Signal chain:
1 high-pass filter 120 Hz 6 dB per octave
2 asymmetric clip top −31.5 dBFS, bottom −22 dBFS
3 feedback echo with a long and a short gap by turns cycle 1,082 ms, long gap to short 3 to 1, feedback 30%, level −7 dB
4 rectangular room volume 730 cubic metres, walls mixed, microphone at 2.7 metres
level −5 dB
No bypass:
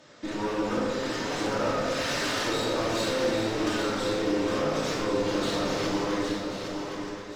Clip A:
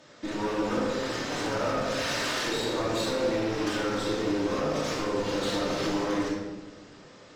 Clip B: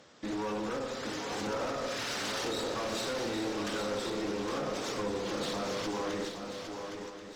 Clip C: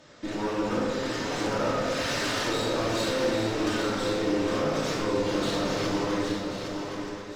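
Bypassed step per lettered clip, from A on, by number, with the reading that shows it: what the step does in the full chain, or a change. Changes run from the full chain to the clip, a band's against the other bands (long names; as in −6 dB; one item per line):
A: 3, change in momentary loudness spread −1 LU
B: 4, echo-to-direct ratio 6.5 dB to −5.5 dB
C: 1, 125 Hz band +2.0 dB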